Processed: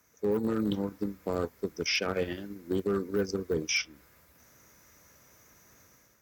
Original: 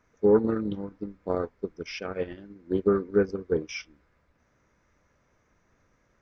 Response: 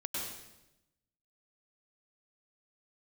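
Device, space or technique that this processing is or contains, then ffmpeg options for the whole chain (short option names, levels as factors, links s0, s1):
FM broadcast chain: -filter_complex "[0:a]highpass=63,dynaudnorm=f=170:g=5:m=2.51,acrossover=split=250|4100[s0][s1][s2];[s0]acompressor=threshold=0.0447:ratio=4[s3];[s1]acompressor=threshold=0.0708:ratio=4[s4];[s2]acompressor=threshold=0.00447:ratio=4[s5];[s3][s4][s5]amix=inputs=3:normalize=0,aemphasis=mode=production:type=50fm,alimiter=limit=0.133:level=0:latency=1:release=12,asoftclip=type=hard:threshold=0.112,lowpass=f=15000:w=0.5412,lowpass=f=15000:w=1.3066,aemphasis=mode=production:type=50fm,volume=0.794"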